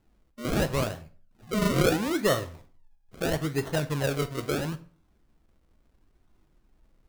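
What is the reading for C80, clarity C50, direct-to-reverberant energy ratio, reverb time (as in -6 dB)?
20.0 dB, 16.5 dB, 9.5 dB, 0.40 s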